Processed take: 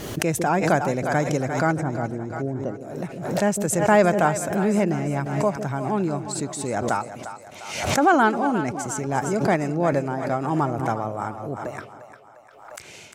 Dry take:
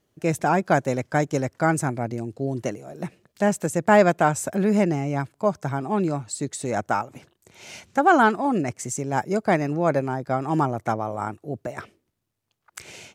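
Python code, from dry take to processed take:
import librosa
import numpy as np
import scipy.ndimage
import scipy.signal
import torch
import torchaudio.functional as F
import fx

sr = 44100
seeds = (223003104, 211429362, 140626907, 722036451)

p1 = fx.moving_average(x, sr, points=19, at=(1.71, 2.81))
p2 = p1 + fx.echo_split(p1, sr, split_hz=520.0, low_ms=155, high_ms=351, feedback_pct=52, wet_db=-11.5, dry=0)
p3 = fx.pre_swell(p2, sr, db_per_s=57.0)
y = p3 * librosa.db_to_amplitude(-1.0)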